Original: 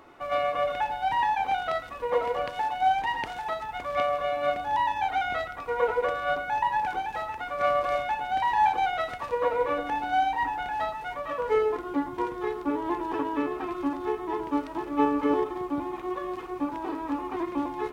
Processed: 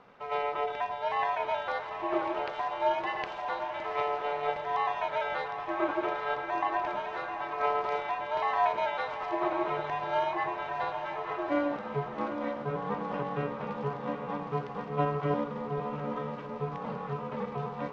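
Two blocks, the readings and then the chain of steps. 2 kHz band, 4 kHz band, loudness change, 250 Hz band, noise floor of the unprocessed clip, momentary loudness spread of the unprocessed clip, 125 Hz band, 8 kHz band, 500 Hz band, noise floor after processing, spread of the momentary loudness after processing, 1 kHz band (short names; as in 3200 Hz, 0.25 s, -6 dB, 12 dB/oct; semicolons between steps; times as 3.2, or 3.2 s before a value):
-4.0 dB, -4.5 dB, -4.0 dB, -5.5 dB, -39 dBFS, 7 LU, +9.0 dB, n/a, -3.5 dB, -40 dBFS, 6 LU, -4.5 dB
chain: LPF 5700 Hz 24 dB/oct; bell 70 Hz -12 dB 1.7 oct; ring modulator 140 Hz; diffused feedback echo 0.839 s, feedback 48%, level -8 dB; gain -1.5 dB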